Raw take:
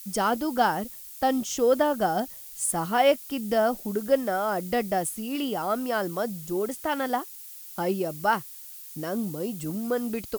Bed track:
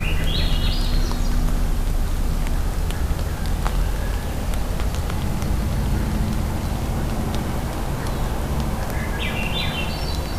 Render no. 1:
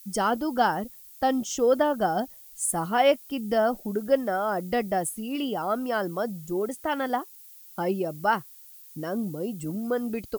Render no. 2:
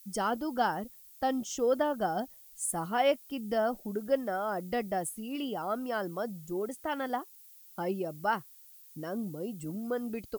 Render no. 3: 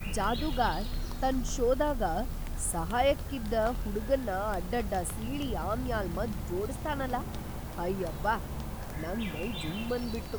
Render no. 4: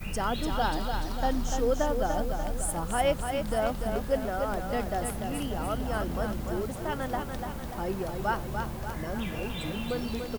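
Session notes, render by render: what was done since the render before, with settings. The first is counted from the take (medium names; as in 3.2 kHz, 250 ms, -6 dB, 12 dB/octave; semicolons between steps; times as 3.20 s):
noise reduction 8 dB, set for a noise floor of -43 dBFS
trim -6 dB
add bed track -14.5 dB
feedback delay 293 ms, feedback 54%, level -6 dB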